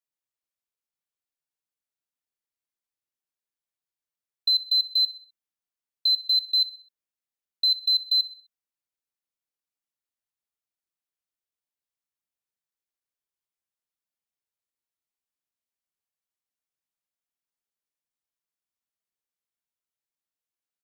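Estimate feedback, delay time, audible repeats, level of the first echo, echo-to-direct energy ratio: 44%, 64 ms, 3, -17.5 dB, -16.5 dB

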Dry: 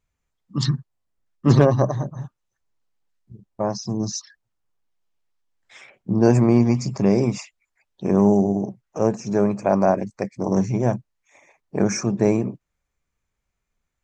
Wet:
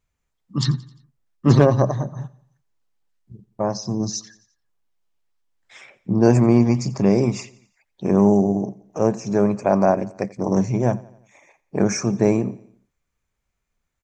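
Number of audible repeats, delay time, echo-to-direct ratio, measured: 3, 87 ms, -20.0 dB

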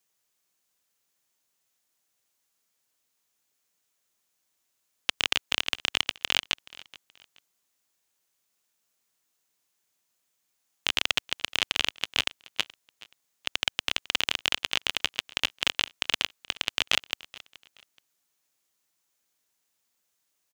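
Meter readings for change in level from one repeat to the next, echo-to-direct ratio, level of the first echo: -11.0 dB, -20.5 dB, -21.0 dB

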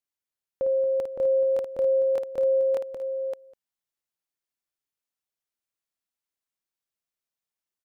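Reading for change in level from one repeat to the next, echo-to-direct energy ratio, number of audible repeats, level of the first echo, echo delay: no steady repeat, -2.5 dB, 3, -7.5 dB, 54 ms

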